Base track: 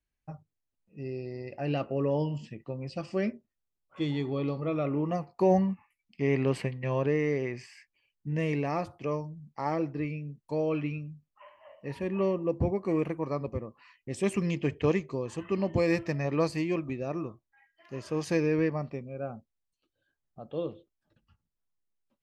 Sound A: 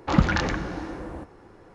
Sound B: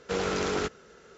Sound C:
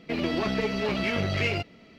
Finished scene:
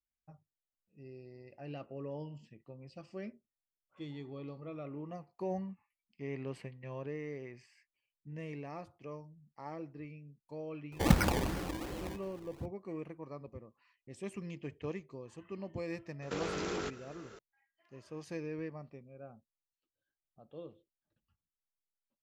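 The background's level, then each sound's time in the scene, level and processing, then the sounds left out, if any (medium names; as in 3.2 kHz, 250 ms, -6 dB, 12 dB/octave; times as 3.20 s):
base track -14 dB
10.92 s: add A -6 dB + decimation with a swept rate 23× 2.7 Hz
16.22 s: add B -0.5 dB + compression 5:1, threshold -34 dBFS
not used: C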